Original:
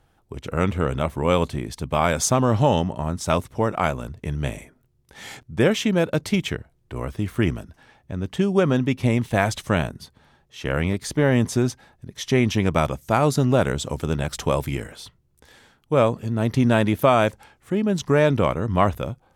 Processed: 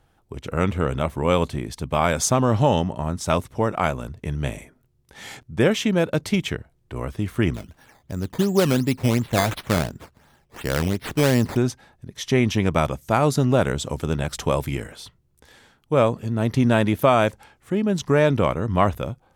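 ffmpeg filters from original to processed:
-filter_complex "[0:a]asettb=1/sr,asplit=3[a][b][c];[a]atrim=end=7.544[d];[b]atrim=start=7.54:end=11.57,asetpts=PTS-STARTPTS,afade=t=in:d=0.004:c=qsin,afade=t=out:st=4.026:d=0.004:c=qsin,acrusher=samples=11:mix=1:aa=0.000001:lfo=1:lforange=11:lforate=2.8[e];[c]atrim=start=11.566[f];[d][e]acrossfade=d=0.004:c1=hsin:c2=qsin[g];[g][f]acrossfade=d=0.004:c1=qsin:c2=hsin"

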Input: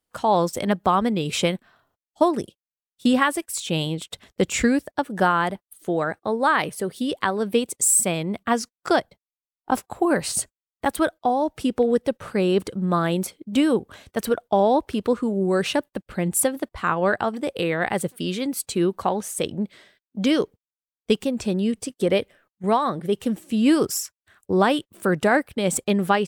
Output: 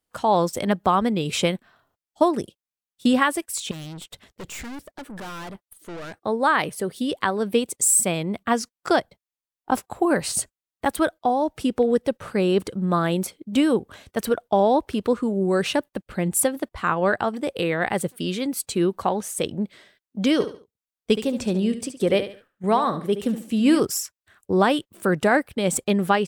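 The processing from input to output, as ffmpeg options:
-filter_complex "[0:a]asettb=1/sr,asplit=3[a][b][c];[a]atrim=end=3.714[d];[b]atrim=start=3.71:end=6.2,asetpts=PTS-STARTPTS,afade=t=in:d=0.004:c=qsin,afade=t=out:st=2.486:d=0.004:c=qsin,aeval=exprs='(tanh(50.1*val(0)+0.35)-tanh(0.35))/50.1':c=same[e];[c]atrim=start=6.196[f];[d][e]acrossfade=d=0.004:c1=hsin:c2=qsin[g];[g][f]acrossfade=d=0.004:c1=qsin:c2=hsin,asettb=1/sr,asplit=3[h][i][j];[h]atrim=end=20.334[k];[i]atrim=start=20.33:end=23.8,asetpts=PTS-STARTPTS,afade=t=in:d=0.004:c=qsin,afade=t=out:st=3.466:d=0.004:c=qsin,aecho=1:1:71|142|213:0.282|0.0874|0.0271,atrim=end_sample=153027[l];[j]atrim=start=23.796[m];[k][l]acrossfade=d=0.004:c1=hsin:c2=qsin[n];[n][m]acrossfade=d=0.004:c1=qsin:c2=hsin"

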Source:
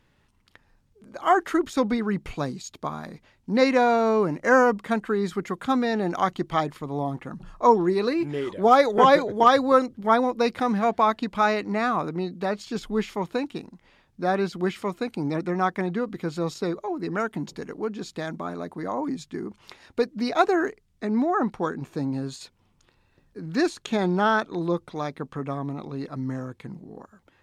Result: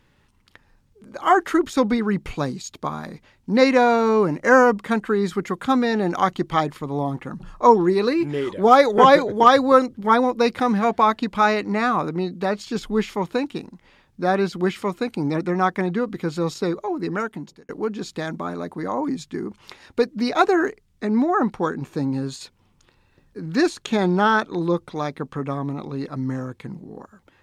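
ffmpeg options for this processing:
-filter_complex "[0:a]asplit=2[a][b];[a]atrim=end=17.69,asetpts=PTS-STARTPTS,afade=t=out:st=17.06:d=0.63[c];[b]atrim=start=17.69,asetpts=PTS-STARTPTS,afade=t=in:d=0.004:c=hsin[d];[c][d]concat=n=2:v=0:a=1,bandreject=f=670:w=12,volume=4dB"

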